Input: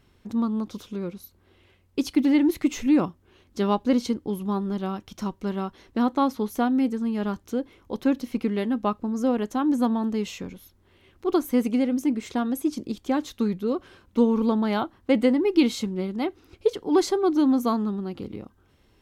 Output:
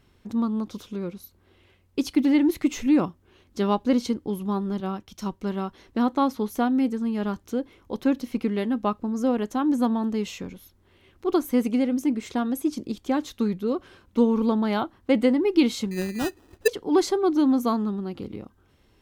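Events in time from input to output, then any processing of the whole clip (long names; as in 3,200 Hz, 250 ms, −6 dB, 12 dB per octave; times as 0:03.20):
0:04.80–0:05.41: multiband upward and downward expander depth 70%
0:15.91–0:16.68: sample-rate reduction 2,200 Hz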